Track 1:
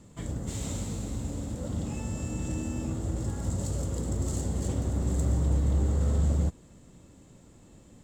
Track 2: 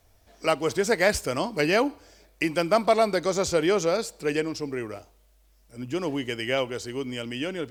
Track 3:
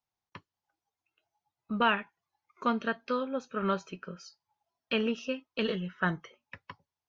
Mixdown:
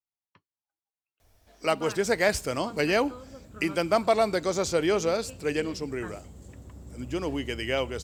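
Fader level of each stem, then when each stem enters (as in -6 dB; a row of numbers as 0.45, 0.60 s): -17.0, -2.0, -14.0 dB; 1.80, 1.20, 0.00 s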